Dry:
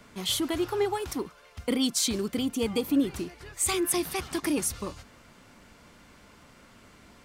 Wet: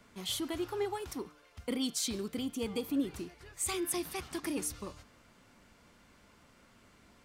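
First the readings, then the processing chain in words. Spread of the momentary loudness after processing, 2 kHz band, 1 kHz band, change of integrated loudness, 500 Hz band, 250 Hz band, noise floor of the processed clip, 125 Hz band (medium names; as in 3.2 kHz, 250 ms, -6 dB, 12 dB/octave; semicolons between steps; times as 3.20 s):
12 LU, -7.5 dB, -7.5 dB, -7.5 dB, -7.5 dB, -7.5 dB, -63 dBFS, -7.5 dB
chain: de-hum 149.6 Hz, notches 40; trim -7.5 dB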